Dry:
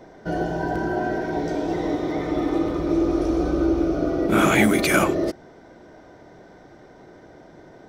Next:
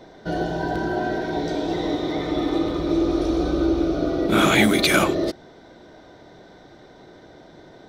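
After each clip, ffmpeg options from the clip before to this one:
-af "equalizer=f=3.8k:t=o:w=0.52:g=11.5"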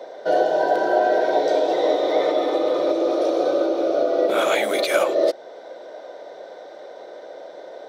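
-af "alimiter=limit=-15.5dB:level=0:latency=1:release=308,highpass=f=540:t=q:w=4.9,volume=2.5dB"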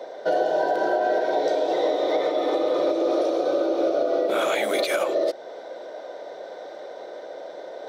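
-af "alimiter=limit=-13.5dB:level=0:latency=1:release=174,areverse,acompressor=mode=upward:threshold=-33dB:ratio=2.5,areverse"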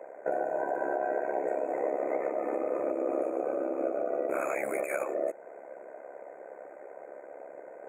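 -af "tremolo=f=68:d=0.75,afftfilt=real='re*(1-between(b*sr/4096,2600,6500))':imag='im*(1-between(b*sr/4096,2600,6500))':win_size=4096:overlap=0.75,volume=-5dB"

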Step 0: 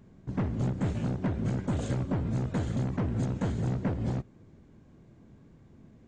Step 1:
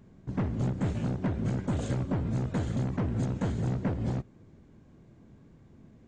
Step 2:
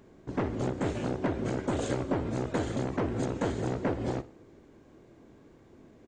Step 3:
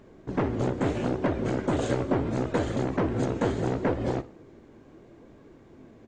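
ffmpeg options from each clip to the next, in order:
-af anull
-af "lowshelf=f=250:t=q:w=1.5:g=-8.5,aecho=1:1:61|122|183|244:0.119|0.0535|0.0241|0.0108,volume=4.5dB"
-af "highshelf=f=6.3k:g=-7.5,flanger=delay=1.6:depth=7.4:regen=77:speed=0.75:shape=sinusoidal,volume=8.5dB"

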